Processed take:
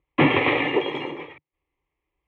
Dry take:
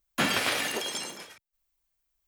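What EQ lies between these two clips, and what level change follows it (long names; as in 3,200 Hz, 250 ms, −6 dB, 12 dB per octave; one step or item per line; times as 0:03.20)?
loudspeaker in its box 140–3,600 Hz, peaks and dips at 150 Hz +10 dB, 300 Hz +5 dB, 690 Hz +9 dB, 2,100 Hz +6 dB
spectral tilt −3.5 dB per octave
phaser with its sweep stopped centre 1,000 Hz, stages 8
+9.0 dB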